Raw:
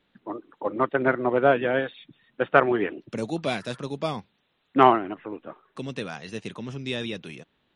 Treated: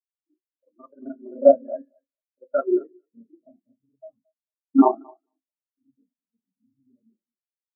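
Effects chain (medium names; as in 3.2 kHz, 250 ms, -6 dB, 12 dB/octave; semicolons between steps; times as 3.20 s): time reversed locally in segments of 33 ms; level-controlled noise filter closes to 360 Hz, open at -16 dBFS; in parallel at -12 dB: decimation with a swept rate 29×, swing 100% 3.2 Hz; on the sum: thinning echo 223 ms, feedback 37%, high-pass 330 Hz, level -6.5 dB; on a send at -5 dB: reverberation RT60 0.45 s, pre-delay 3 ms; on the sum: spectral contrast expander 4:1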